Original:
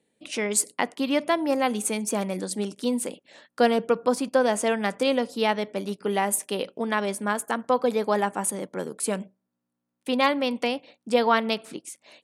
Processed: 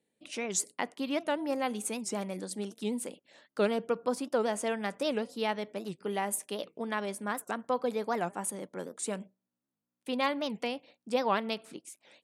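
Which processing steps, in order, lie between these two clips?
wow of a warped record 78 rpm, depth 250 cents
level −8 dB

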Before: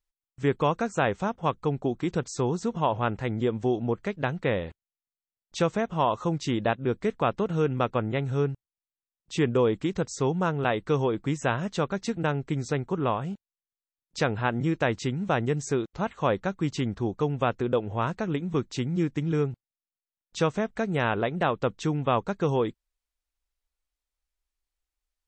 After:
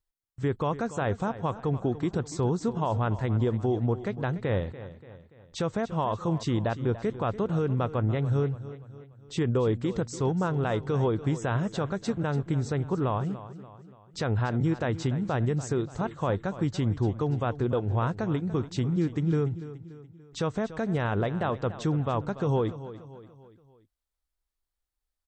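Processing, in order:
brickwall limiter −17.5 dBFS, peak gain reduction 7 dB
graphic EQ with 15 bands 100 Hz +9 dB, 2,500 Hz −6 dB, 6,300 Hz −4 dB
repeating echo 289 ms, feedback 47%, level −14.5 dB

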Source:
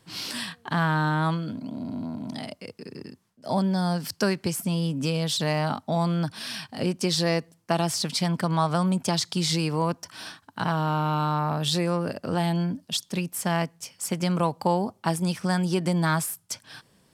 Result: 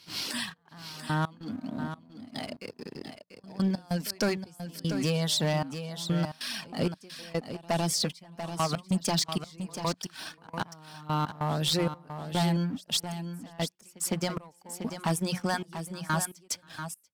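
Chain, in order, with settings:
mains-hum notches 60/120/180 Hz
reverb reduction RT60 0.69 s
leveller curve on the samples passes 2
gate pattern "xxxx...x.xxx...x" 96 BPM −24 dB
echo ahead of the sound 158 ms −23 dB
hard clipping −14 dBFS, distortion −20 dB
on a send: single-tap delay 689 ms −9.5 dB
on the sum: level −7 dB

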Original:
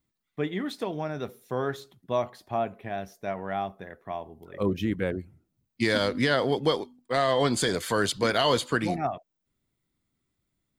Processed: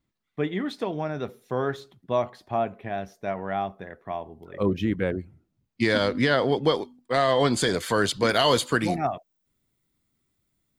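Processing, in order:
high-shelf EQ 7,500 Hz −11.5 dB, from 0:06.75 −4.5 dB, from 0:08.29 +5 dB
level +2.5 dB

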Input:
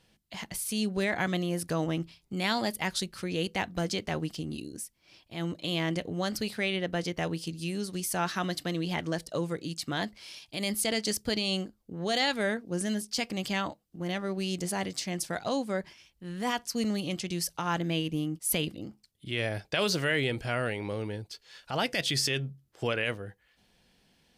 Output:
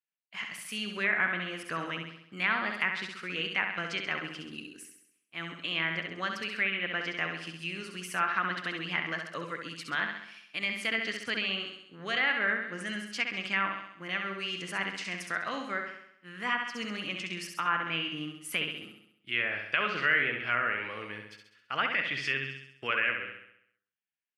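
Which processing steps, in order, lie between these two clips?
downward expander −39 dBFS
high-pass filter 170 Hz 12 dB per octave
flat-topped bell 1,800 Hz +15 dB
flutter between parallel walls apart 11.4 metres, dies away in 0.72 s
treble cut that deepens with the level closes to 2,200 Hz, closed at −15 dBFS
level −9 dB

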